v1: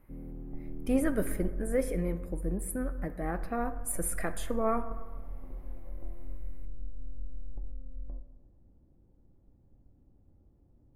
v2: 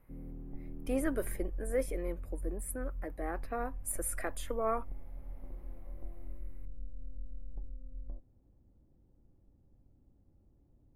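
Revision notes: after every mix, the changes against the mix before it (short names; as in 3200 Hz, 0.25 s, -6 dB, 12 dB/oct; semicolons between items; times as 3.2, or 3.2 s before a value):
speech: add HPF 280 Hz 24 dB/oct; reverb: off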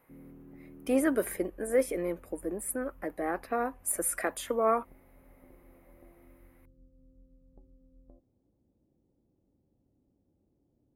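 speech +6.5 dB; background: add band-pass 390 Hz, Q 0.66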